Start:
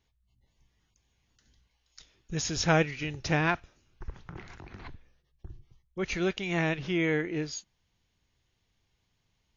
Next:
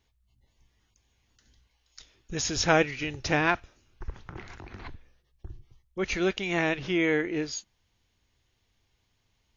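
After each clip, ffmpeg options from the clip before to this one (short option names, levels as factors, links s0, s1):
-af "equalizer=f=160:t=o:w=0.34:g=-8,volume=1.41"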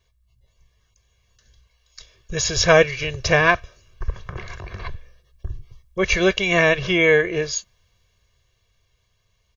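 -af "aecho=1:1:1.8:0.96,dynaudnorm=f=240:g=17:m=2.24,volume=1.19"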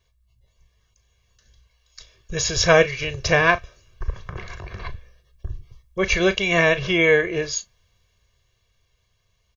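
-filter_complex "[0:a]asplit=2[s0][s1];[s1]adelay=36,volume=0.2[s2];[s0][s2]amix=inputs=2:normalize=0,volume=0.891"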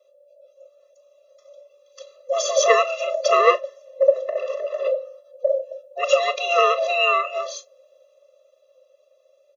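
-af "afftfilt=real='real(if(lt(b,1008),b+24*(1-2*mod(floor(b/24),2)),b),0)':imag='imag(if(lt(b,1008),b+24*(1-2*mod(floor(b/24),2)),b),0)':win_size=2048:overlap=0.75,equalizer=f=470:w=0.85:g=10,afftfilt=real='re*eq(mod(floor(b*sr/1024/350),2),1)':imag='im*eq(mod(floor(b*sr/1024/350),2),1)':win_size=1024:overlap=0.75"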